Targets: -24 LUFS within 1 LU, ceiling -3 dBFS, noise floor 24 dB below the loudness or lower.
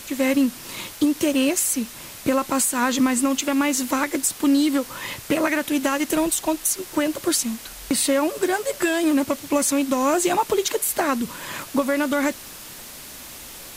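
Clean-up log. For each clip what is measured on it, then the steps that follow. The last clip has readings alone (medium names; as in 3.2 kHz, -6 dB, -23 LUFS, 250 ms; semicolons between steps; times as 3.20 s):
dropouts 1; longest dropout 1.5 ms; noise floor -39 dBFS; noise floor target -46 dBFS; loudness -22.0 LUFS; peak level -9.0 dBFS; loudness target -24.0 LUFS
-> interpolate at 1.34 s, 1.5 ms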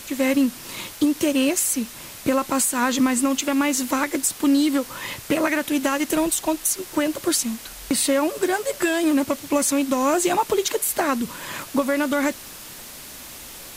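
dropouts 0; noise floor -39 dBFS; noise floor target -46 dBFS
-> noise reduction 7 dB, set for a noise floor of -39 dBFS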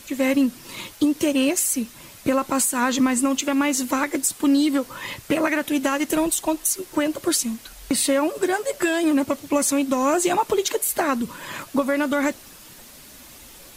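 noise floor -45 dBFS; noise floor target -46 dBFS
-> noise reduction 6 dB, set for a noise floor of -45 dBFS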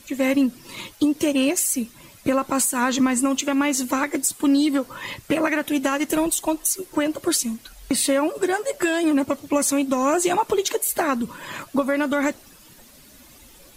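noise floor -49 dBFS; loudness -22.0 LUFS; peak level -9.5 dBFS; loudness target -24.0 LUFS
-> trim -2 dB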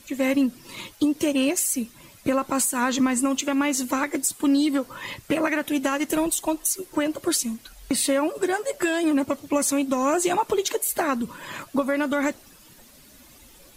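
loudness -24.0 LUFS; peak level -11.5 dBFS; noise floor -51 dBFS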